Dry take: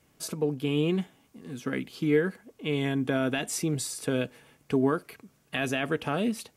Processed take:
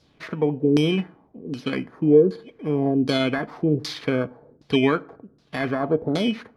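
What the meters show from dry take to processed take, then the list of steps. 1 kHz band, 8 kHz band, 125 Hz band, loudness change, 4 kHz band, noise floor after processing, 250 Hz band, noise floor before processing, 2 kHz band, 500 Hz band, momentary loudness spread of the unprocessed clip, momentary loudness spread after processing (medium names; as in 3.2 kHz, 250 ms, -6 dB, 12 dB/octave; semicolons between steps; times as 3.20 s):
+5.0 dB, under -10 dB, +5.0 dB, +6.5 dB, +6.0 dB, -60 dBFS, +6.5 dB, -66 dBFS, +2.5 dB, +7.5 dB, 11 LU, 15 LU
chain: bit-reversed sample order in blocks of 16 samples; LFO low-pass saw down 1.3 Hz 330–5000 Hz; FDN reverb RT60 0.61 s, low-frequency decay 1.05×, high-frequency decay 0.6×, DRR 19 dB; trim +5 dB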